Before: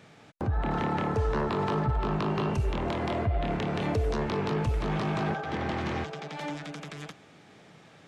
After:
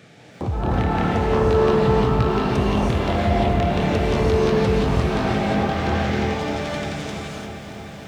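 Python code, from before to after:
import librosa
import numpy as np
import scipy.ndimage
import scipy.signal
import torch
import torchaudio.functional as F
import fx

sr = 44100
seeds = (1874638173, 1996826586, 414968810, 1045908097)

p1 = scipy.signal.sosfilt(scipy.signal.butter(2, 55.0, 'highpass', fs=sr, output='sos'), x)
p2 = 10.0 ** (-33.0 / 20.0) * np.tanh(p1 / 10.0 ** (-33.0 / 20.0))
p3 = p1 + (p2 * 10.0 ** (-7.5 / 20.0))
p4 = fx.filter_lfo_notch(p3, sr, shape='saw_up', hz=1.4, low_hz=910.0, high_hz=2200.0, q=2.4)
p5 = fx.rev_gated(p4, sr, seeds[0], gate_ms=370, shape='rising', drr_db=-4.0)
p6 = fx.echo_crushed(p5, sr, ms=314, feedback_pct=80, bits=9, wet_db=-12.0)
y = p6 * 10.0 ** (3.0 / 20.0)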